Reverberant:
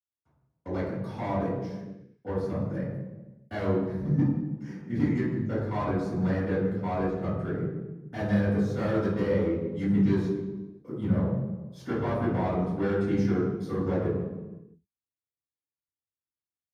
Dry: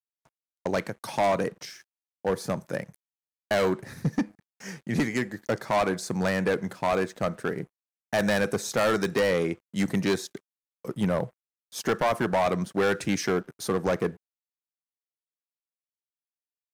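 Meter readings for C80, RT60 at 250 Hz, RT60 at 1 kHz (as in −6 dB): 3.5 dB, 1.5 s, 1.1 s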